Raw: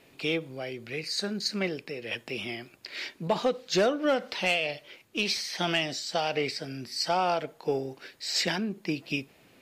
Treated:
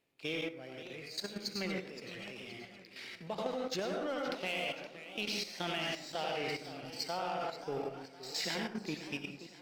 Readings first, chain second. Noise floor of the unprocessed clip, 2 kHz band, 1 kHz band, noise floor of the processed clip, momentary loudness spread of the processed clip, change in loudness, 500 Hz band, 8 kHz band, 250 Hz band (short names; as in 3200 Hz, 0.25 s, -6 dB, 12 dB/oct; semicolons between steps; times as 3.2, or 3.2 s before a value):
-60 dBFS, -8.0 dB, -8.5 dB, -55 dBFS, 10 LU, -9.0 dB, -9.0 dB, -9.0 dB, -8.5 dB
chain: power-law curve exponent 1.4; plate-style reverb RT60 0.65 s, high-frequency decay 0.6×, pre-delay 75 ms, DRR 0.5 dB; level quantiser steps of 11 dB; warbling echo 0.522 s, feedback 44%, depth 177 cents, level -13 dB; gain -3.5 dB